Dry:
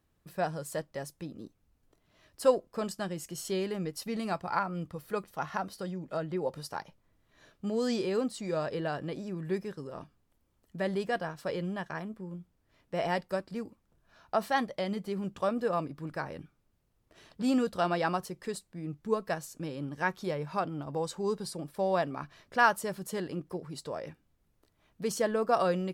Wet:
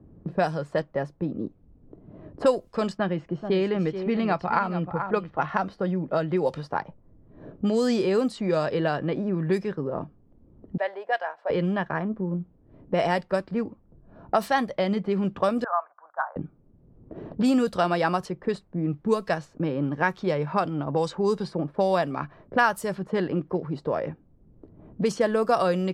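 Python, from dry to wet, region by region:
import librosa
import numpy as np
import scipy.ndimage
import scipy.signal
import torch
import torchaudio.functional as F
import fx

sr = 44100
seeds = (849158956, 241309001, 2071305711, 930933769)

y = fx.chain(x, sr, fx.lowpass(hz=3600.0, slope=12),
    fx.echo_single(ms=433, db=-11.5), at=(2.98, 5.49))
y = fx.chain(y, sr, fx.highpass(hz=670.0, slope=24),
    fx.peak_eq(hz=1200.0, db=-7.5, octaves=0.51), at=(10.77, 11.5))
y = fx.chain(y, sr, fx.ellip_bandpass(low_hz=690.0, high_hz=1500.0, order=3, stop_db=60),
    fx.tilt_eq(slope=3.0), at=(15.64, 16.36))
y = fx.env_lowpass(y, sr, base_hz=340.0, full_db=-26.0)
y = fx.band_squash(y, sr, depth_pct=70)
y = F.gain(torch.from_numpy(y), 7.5).numpy()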